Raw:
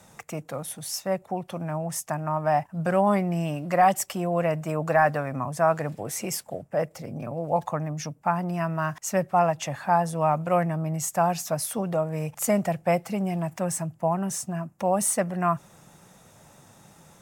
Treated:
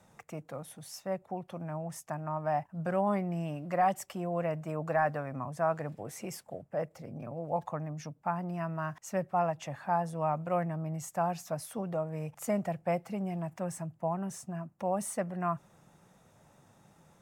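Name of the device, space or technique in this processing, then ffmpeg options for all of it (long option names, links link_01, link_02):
behind a face mask: -af "highshelf=frequency=3000:gain=-7.5,volume=-7.5dB"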